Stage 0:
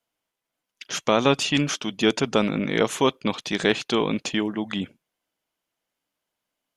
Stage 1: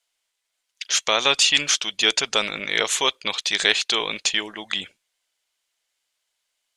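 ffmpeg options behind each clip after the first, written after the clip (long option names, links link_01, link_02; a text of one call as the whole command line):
ffmpeg -i in.wav -af "equalizer=frequency=125:width_type=o:width=1:gain=-12,equalizer=frequency=250:width_type=o:width=1:gain=-12,equalizer=frequency=2000:width_type=o:width=1:gain=6,equalizer=frequency=4000:width_type=o:width=1:gain=9,equalizer=frequency=8000:width_type=o:width=1:gain=12,volume=-2dB" out.wav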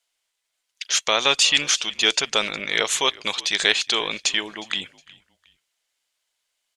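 ffmpeg -i in.wav -filter_complex "[0:a]asplit=3[link_01][link_02][link_03];[link_02]adelay=362,afreqshift=-65,volume=-22.5dB[link_04];[link_03]adelay=724,afreqshift=-130,volume=-32.4dB[link_05];[link_01][link_04][link_05]amix=inputs=3:normalize=0" out.wav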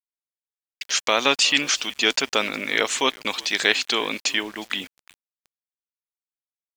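ffmpeg -i in.wav -af "highpass=120,equalizer=frequency=170:width_type=q:width=4:gain=-4,equalizer=frequency=260:width_type=q:width=4:gain=10,equalizer=frequency=3500:width_type=q:width=4:gain=-5,equalizer=frequency=6400:width_type=q:width=4:gain=-4,lowpass=frequency=7800:width=0.5412,lowpass=frequency=7800:width=1.3066,aeval=exprs='val(0)*gte(abs(val(0)),0.00891)':channel_layout=same,volume=1dB" out.wav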